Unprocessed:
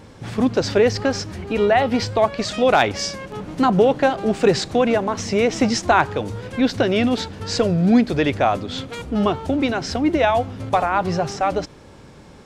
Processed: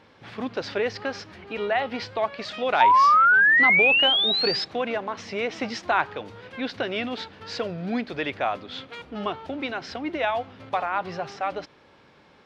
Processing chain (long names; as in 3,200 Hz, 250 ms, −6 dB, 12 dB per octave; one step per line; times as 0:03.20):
spectral tilt +4 dB per octave
sound drawn into the spectrogram rise, 0:02.80–0:04.65, 890–5,300 Hz −9 dBFS
high-frequency loss of the air 330 metres
level −5 dB